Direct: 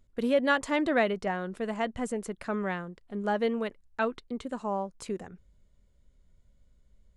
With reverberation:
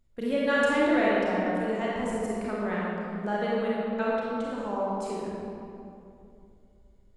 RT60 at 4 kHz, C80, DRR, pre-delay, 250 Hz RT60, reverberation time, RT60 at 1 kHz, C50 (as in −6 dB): 1.5 s, −1.5 dB, −6.5 dB, 29 ms, 3.0 s, 2.6 s, 2.5 s, −4.0 dB